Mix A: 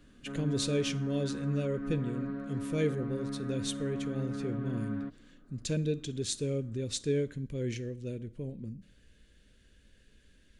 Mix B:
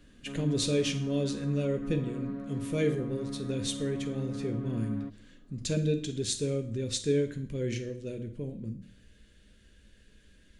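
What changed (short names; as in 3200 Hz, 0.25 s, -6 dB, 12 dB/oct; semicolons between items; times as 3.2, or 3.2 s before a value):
speech: send +11.5 dB; background: add bell 1500 Hz -8 dB 0.43 oct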